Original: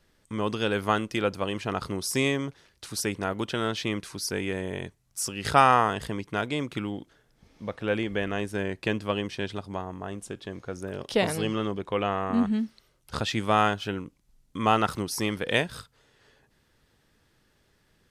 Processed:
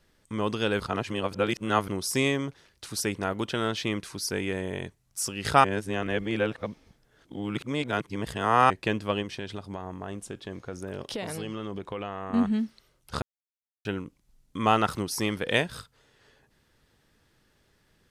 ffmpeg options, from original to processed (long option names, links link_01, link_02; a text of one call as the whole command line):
ffmpeg -i in.wav -filter_complex "[0:a]asettb=1/sr,asplit=3[link_01][link_02][link_03];[link_01]atrim=end=9.224[link_04];[link_02]atrim=start=9.22:end=12.34,asetpts=PTS-STARTPTS,afade=type=in:duration=0.004:curve=qsin,afade=type=out:start_time=3.116:duration=0.004:curve=qsin,acompressor=threshold=-30dB:ratio=6:attack=3.2:release=140:knee=1:detection=peak[link_05];[link_03]atrim=start=12.336[link_06];[link_04][link_05]acrossfade=duration=0.004:curve1=hsin:curve2=qsin[link_07];[link_07][link_06]acrossfade=duration=0.004:curve1=qsin:curve2=hsin,asplit=7[link_08][link_09][link_10][link_11][link_12][link_13][link_14];[link_08]atrim=end=0.802[link_15];[link_09]atrim=start=0.798:end=1.882,asetpts=PTS-STARTPTS,areverse[link_16];[link_10]atrim=start=1.878:end=5.642[link_17];[link_11]atrim=start=5.638:end=8.702,asetpts=PTS-STARTPTS,areverse[link_18];[link_12]atrim=start=8.698:end=13.22,asetpts=PTS-STARTPTS,afade=type=out:start_time=4.518:duration=0.004:curve=hsin[link_19];[link_13]atrim=start=13.22:end=13.85,asetpts=PTS-STARTPTS,volume=0[link_20];[link_14]atrim=start=13.85,asetpts=PTS-STARTPTS,afade=type=in:duration=0.004:curve=hsin[link_21];[link_15][link_16]acrossfade=duration=0.004:curve1=hsin:curve2=hsin[link_22];[link_22][link_17]acrossfade=duration=0.004:curve1=hsin:curve2=hsin[link_23];[link_23][link_18]acrossfade=duration=0.004:curve1=hsin:curve2=hsin[link_24];[link_19][link_20][link_21]concat=n=3:v=0:a=1[link_25];[link_24][link_25]acrossfade=duration=0.004:curve1=hsin:curve2=hsin" out.wav